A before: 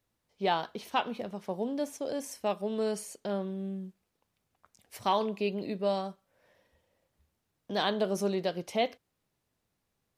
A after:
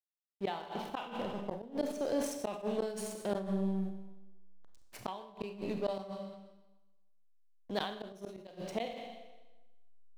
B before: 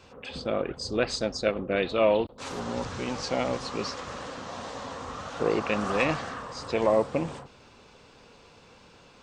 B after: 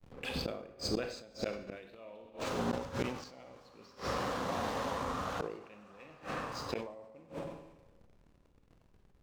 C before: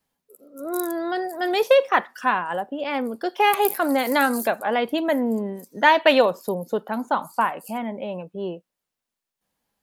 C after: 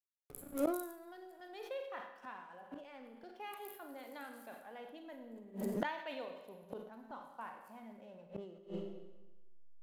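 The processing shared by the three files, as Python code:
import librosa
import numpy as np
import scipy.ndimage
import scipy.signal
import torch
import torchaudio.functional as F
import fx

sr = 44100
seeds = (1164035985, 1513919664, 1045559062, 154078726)

y = fx.backlash(x, sr, play_db=-40.5)
y = fx.rev_schroeder(y, sr, rt60_s=1.1, comb_ms=31, drr_db=4.5)
y = fx.rider(y, sr, range_db=5, speed_s=2.0)
y = fx.gate_flip(y, sr, shuts_db=-20.0, range_db=-28)
y = fx.sustainer(y, sr, db_per_s=74.0)
y = y * 10.0 ** (-2.0 / 20.0)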